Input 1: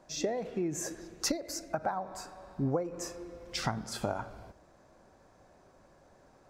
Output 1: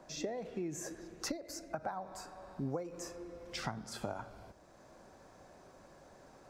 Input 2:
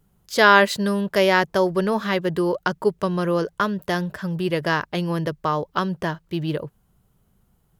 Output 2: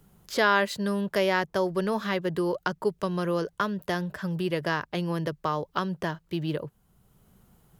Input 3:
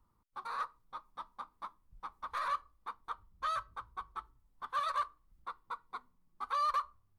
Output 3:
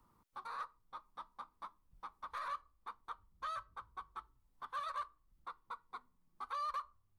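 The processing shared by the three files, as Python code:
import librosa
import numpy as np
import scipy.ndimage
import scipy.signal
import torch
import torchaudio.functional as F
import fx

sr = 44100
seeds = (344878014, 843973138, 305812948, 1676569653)

y = fx.band_squash(x, sr, depth_pct=40)
y = F.gain(torch.from_numpy(y), -6.0).numpy()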